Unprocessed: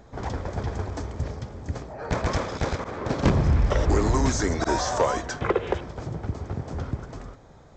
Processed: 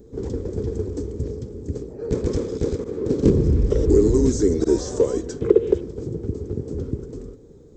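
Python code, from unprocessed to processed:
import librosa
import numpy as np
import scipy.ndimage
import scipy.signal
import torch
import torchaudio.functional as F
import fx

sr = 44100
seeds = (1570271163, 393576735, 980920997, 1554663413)

y = fx.curve_eq(x, sr, hz=(150.0, 450.0, 650.0, 2000.0, 6300.0, 9600.0), db=(0, 10, -17, -16, -4, 5))
y = F.gain(torch.from_numpy(y), 1.5).numpy()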